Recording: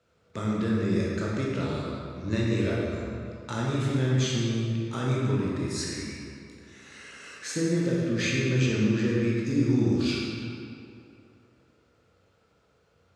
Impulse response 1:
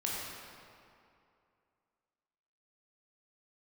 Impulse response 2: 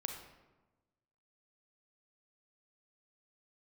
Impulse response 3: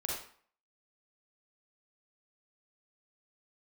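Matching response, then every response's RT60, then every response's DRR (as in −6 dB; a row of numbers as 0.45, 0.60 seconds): 1; 2.5, 1.2, 0.50 seconds; −5.0, 3.5, −3.5 decibels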